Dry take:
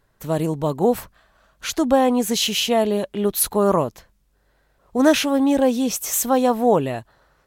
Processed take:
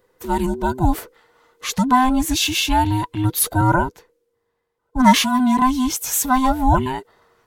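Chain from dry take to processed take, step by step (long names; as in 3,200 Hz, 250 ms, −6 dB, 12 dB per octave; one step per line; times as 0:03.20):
frequency inversion band by band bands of 500 Hz
0:03.61–0:05.62: multiband upward and downward expander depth 40%
level +1.5 dB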